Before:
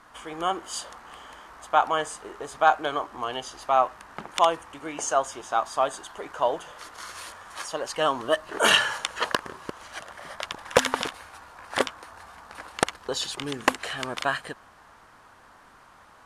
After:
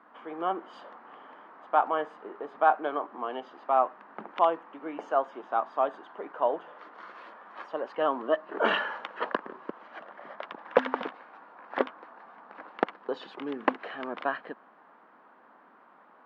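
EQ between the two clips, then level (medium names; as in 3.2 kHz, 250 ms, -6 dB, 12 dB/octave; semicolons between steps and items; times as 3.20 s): steep high-pass 200 Hz 36 dB/octave; low-pass 1.4 kHz 6 dB/octave; distance through air 350 m; 0.0 dB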